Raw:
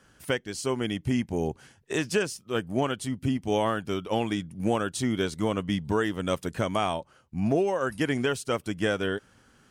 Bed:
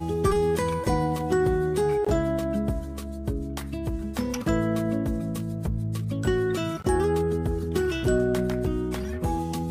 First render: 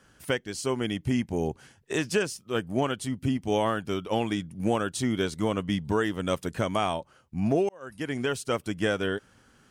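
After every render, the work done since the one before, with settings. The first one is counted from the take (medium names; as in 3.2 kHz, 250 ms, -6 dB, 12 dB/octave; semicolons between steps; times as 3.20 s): 7.69–8.40 s: fade in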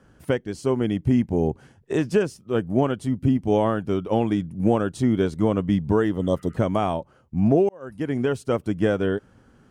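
6.19–6.54 s: spectral replace 1.2–3 kHz before; tilt shelf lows +7.5 dB, about 1.3 kHz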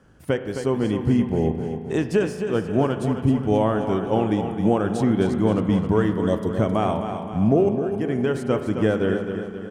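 feedback delay 264 ms, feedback 51%, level -8.5 dB; spring tank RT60 2 s, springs 37 ms, chirp 75 ms, DRR 9 dB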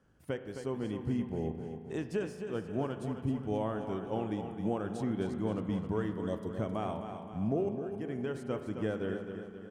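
trim -13.5 dB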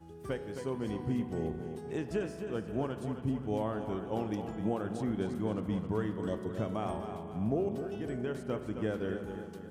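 add bed -22.5 dB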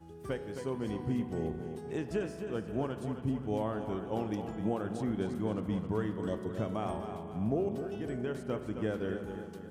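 no audible change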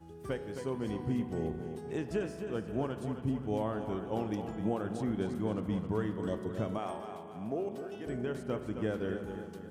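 6.78–8.07 s: high-pass 430 Hz 6 dB/octave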